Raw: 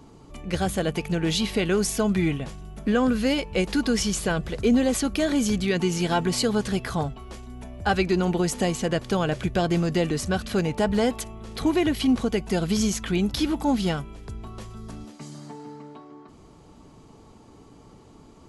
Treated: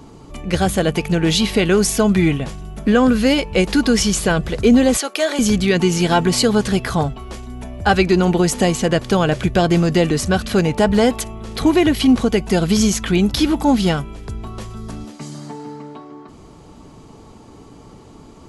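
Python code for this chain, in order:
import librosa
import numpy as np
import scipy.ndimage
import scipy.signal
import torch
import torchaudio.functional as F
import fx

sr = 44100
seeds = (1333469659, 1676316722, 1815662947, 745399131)

y = fx.highpass(x, sr, hz=430.0, slope=24, at=(4.97, 5.39))
y = F.gain(torch.from_numpy(y), 8.0).numpy()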